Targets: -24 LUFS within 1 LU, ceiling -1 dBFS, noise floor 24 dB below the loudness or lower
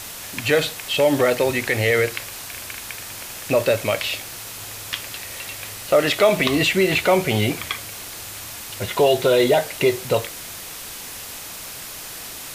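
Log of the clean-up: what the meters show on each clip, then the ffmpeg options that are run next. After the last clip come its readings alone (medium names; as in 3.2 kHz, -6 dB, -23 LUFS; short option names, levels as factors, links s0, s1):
noise floor -35 dBFS; noise floor target -45 dBFS; loudness -21.0 LUFS; peak level -4.0 dBFS; loudness target -24.0 LUFS
-> -af "afftdn=nr=10:nf=-35"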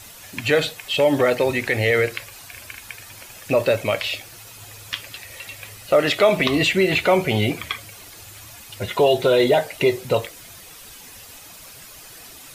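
noise floor -43 dBFS; noise floor target -44 dBFS
-> -af "afftdn=nr=6:nf=-43"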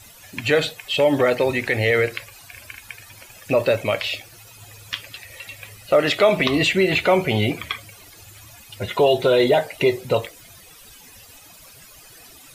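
noise floor -46 dBFS; loudness -20.0 LUFS; peak level -4.0 dBFS; loudness target -24.0 LUFS
-> -af "volume=0.631"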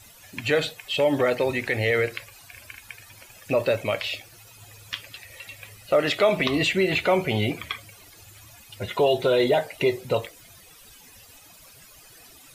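loudness -24.0 LUFS; peak level -8.0 dBFS; noise floor -50 dBFS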